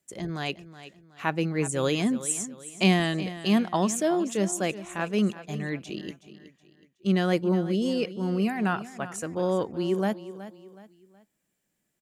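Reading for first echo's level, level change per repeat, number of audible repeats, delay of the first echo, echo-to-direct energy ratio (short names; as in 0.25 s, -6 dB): -14.5 dB, -8.5 dB, 3, 0.371 s, -14.0 dB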